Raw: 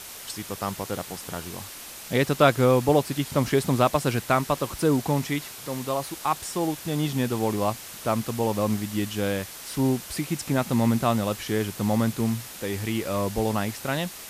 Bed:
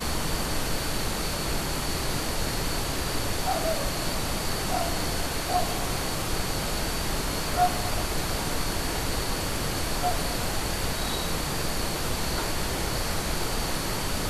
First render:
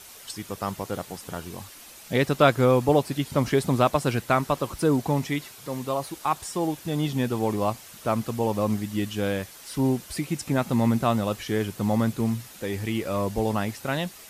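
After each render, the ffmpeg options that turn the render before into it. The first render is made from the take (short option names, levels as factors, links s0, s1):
-af "afftdn=nr=7:nf=-41"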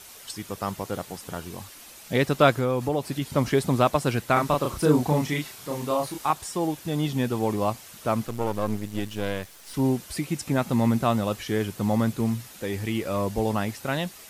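-filter_complex "[0:a]asettb=1/sr,asplit=3[s0][s1][s2];[s0]atrim=end=2.524[s3];[s1]atrim=start=2.52:end=3.22,asetpts=PTS-STARTPTS,afade=t=in:d=0.004:c=qsin,afade=t=out:st=0.696:d=0.004:c=qsin,acompressor=threshold=0.0708:ratio=2.5:attack=3.2:release=140:knee=1:detection=peak[s4];[s2]atrim=start=3.216[s5];[s3][s4]acrossfade=d=0.004:c1=hsin:c2=qsin[s6];[s6][s5]acrossfade=d=0.004:c1=qsin:c2=hsin,asettb=1/sr,asplit=3[s7][s8][s9];[s7]atrim=end=4.334[s10];[s8]atrim=start=4.33:end=6.31,asetpts=PTS-STARTPTS,afade=t=in:d=0.004:c=qsin,afade=t=out:st=1.976:d=0.004:c=qsin,asplit=2[s11][s12];[s12]adelay=33,volume=0.794[s13];[s11][s13]amix=inputs=2:normalize=0,atrim=end_sample=87318[s14];[s9]atrim=start=6.306[s15];[s10][s14]acrossfade=d=0.004:c1=hsin:c2=qsin[s16];[s16][s15]acrossfade=d=0.004:c1=qsin:c2=hsin,asettb=1/sr,asplit=3[s17][s18][s19];[s17]atrim=end=8.264[s20];[s18]atrim=start=8.26:end=9.74,asetpts=PTS-STARTPTS,afade=t=in:d=0.004:c=qsin,afade=t=out:st=1.476:d=0.004:c=qsin,aeval=exprs='if(lt(val(0),0),0.251*val(0),val(0))':c=same[s21];[s19]atrim=start=9.736[s22];[s20][s21]acrossfade=d=0.004:c1=hsin:c2=qsin[s23];[s23][s22]acrossfade=d=0.004:c1=qsin:c2=hsin"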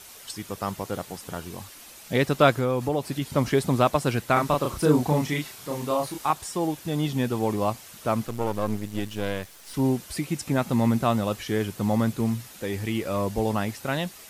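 -af anull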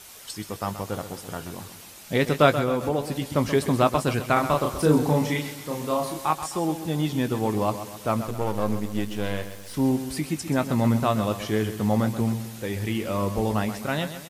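-filter_complex "[0:a]asplit=2[s0][s1];[s1]adelay=19,volume=0.251[s2];[s0][s2]amix=inputs=2:normalize=0,aecho=1:1:130|260|390|520|650:0.282|0.135|0.0649|0.0312|0.015"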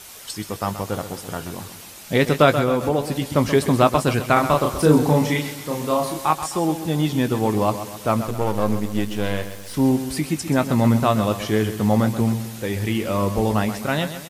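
-af "volume=1.68,alimiter=limit=0.708:level=0:latency=1"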